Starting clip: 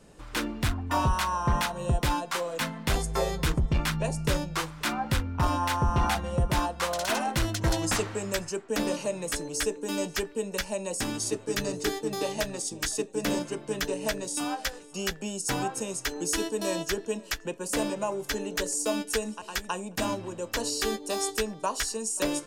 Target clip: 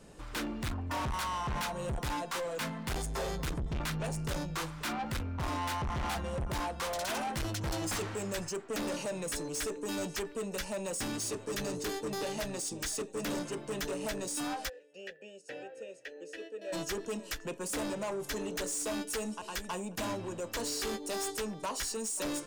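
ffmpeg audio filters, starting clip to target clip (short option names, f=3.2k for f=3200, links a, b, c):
-filter_complex "[0:a]asplit=3[a][b][c];[a]afade=t=out:st=14.68:d=0.02[d];[b]asplit=3[e][f][g];[e]bandpass=f=530:t=q:w=8,volume=0dB[h];[f]bandpass=f=1.84k:t=q:w=8,volume=-6dB[i];[g]bandpass=f=2.48k:t=q:w=8,volume=-9dB[j];[h][i][j]amix=inputs=3:normalize=0,afade=t=in:st=14.68:d=0.02,afade=t=out:st=16.72:d=0.02[k];[c]afade=t=in:st=16.72:d=0.02[l];[d][k][l]amix=inputs=3:normalize=0,asoftclip=type=tanh:threshold=-32dB"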